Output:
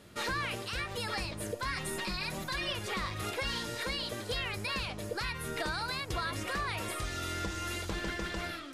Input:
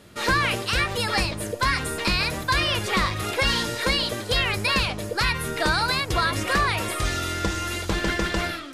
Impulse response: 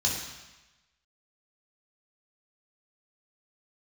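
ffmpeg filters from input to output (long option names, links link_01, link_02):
-filter_complex "[0:a]asettb=1/sr,asplit=3[link_01][link_02][link_03];[link_01]atrim=end=1.764[link_04];[link_02]atrim=start=1.76:end=2.73,asetpts=PTS-STARTPTS,afade=type=in:duration=0.004:curve=qsin,afade=type=out:start_time=0.966:duration=0.004:curve=qsin,aecho=1:1:5.4:0.87,atrim=end_sample=42777[link_05];[link_03]atrim=start=2.726[link_06];[link_04][link_05]acrossfade=duration=0.004:curve1=hsin:curve2=qsin[link_07];[link_07][link_06]acrossfade=duration=0.004:curve1=qsin:curve2=hsin,alimiter=limit=-19.5dB:level=0:latency=1:release=399,volume=-5.5dB"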